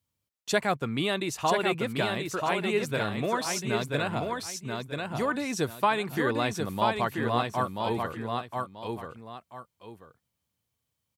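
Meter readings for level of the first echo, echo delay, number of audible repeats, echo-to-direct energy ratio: −4.0 dB, 985 ms, 2, −3.5 dB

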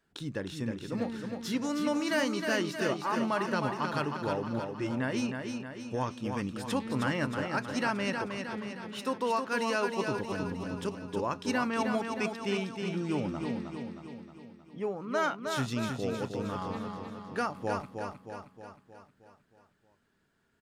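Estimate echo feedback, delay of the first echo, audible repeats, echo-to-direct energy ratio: 55%, 313 ms, 6, −4.0 dB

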